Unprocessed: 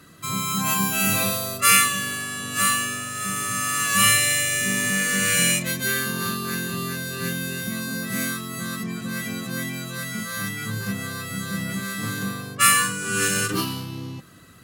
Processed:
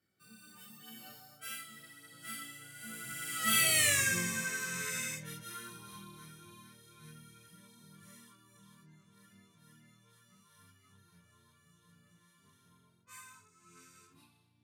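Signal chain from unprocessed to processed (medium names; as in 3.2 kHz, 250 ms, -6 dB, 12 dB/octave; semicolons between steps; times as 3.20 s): Doppler pass-by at 3.88 s, 44 m/s, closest 8.2 m; de-hum 60.21 Hz, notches 32; detune thickener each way 13 cents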